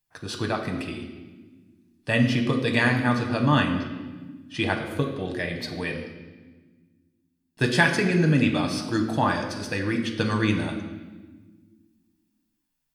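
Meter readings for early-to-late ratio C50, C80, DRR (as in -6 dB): 7.0 dB, 9.0 dB, 2.5 dB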